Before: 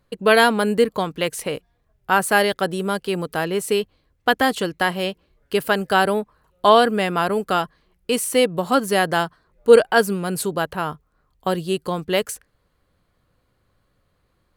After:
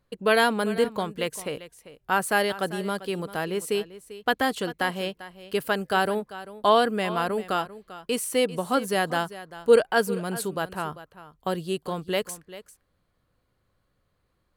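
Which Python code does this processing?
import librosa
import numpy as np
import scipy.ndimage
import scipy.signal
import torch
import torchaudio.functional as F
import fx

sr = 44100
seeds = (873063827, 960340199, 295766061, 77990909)

y = x + 10.0 ** (-15.5 / 20.0) * np.pad(x, (int(394 * sr / 1000.0), 0))[:len(x)]
y = y * librosa.db_to_amplitude(-6.0)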